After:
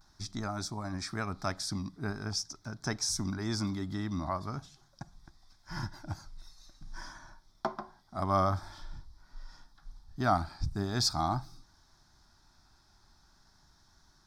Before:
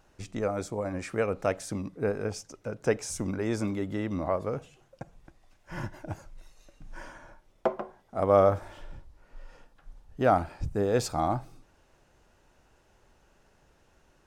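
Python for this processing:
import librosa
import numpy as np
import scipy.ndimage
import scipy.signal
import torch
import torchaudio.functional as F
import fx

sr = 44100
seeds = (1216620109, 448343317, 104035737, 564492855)

y = fx.band_shelf(x, sr, hz=4000.0, db=15.5, octaves=1.2)
y = fx.vibrato(y, sr, rate_hz=0.45, depth_cents=36.0)
y = fx.fixed_phaser(y, sr, hz=1200.0, stages=4)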